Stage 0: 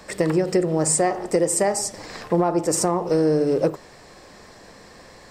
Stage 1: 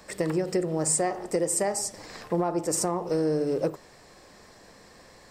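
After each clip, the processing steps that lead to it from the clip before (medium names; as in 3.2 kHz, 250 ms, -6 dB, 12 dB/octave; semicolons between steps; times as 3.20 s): treble shelf 8.8 kHz +5.5 dB; trim -6.5 dB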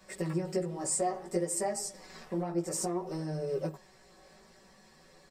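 comb 5.3 ms, depth 93%; chorus voices 2, 0.58 Hz, delay 15 ms, depth 3.3 ms; trim -6.5 dB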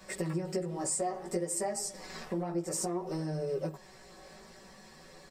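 compression 2:1, threshold -41 dBFS, peak gain reduction 9 dB; trim +5.5 dB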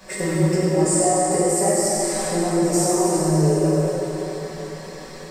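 plate-style reverb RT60 4.3 s, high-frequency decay 0.8×, DRR -7.5 dB; trim +6.5 dB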